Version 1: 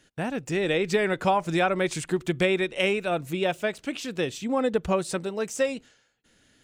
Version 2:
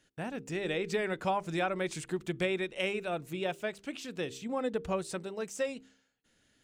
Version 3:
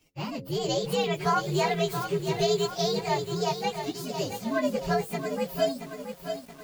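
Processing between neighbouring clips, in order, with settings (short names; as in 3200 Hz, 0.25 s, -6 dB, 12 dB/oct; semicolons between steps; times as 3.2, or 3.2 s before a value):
de-hum 66.12 Hz, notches 7; gain -8 dB
inharmonic rescaling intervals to 125%; lo-fi delay 0.676 s, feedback 55%, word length 9-bit, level -8 dB; gain +8.5 dB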